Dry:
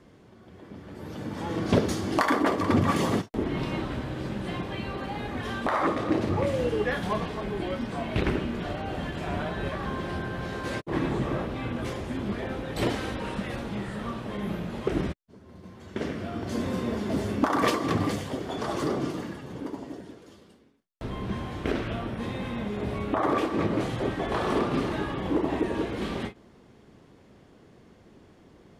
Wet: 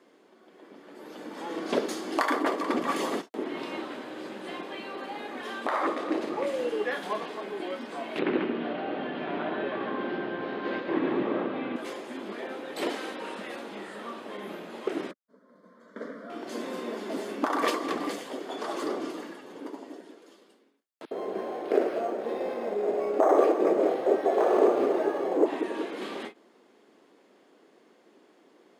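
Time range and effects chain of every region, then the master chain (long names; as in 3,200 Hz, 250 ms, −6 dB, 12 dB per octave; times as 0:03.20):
0:08.19–0:11.76: low-pass filter 3,600 Hz 24 dB per octave + low-shelf EQ 290 Hz +11.5 dB + single-tap delay 140 ms −4 dB
0:15.11–0:16.30: bass and treble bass +2 dB, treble −12 dB + phaser with its sweep stopped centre 530 Hz, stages 8
0:21.05–0:25.46: flat-topped bell 530 Hz +10.5 dB 1.3 octaves + multiband delay without the direct sound highs, lows 60 ms, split 3,300 Hz + linearly interpolated sample-rate reduction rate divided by 6×
whole clip: high-pass filter 280 Hz 24 dB per octave; notch filter 5,700 Hz, Q 20; level −2 dB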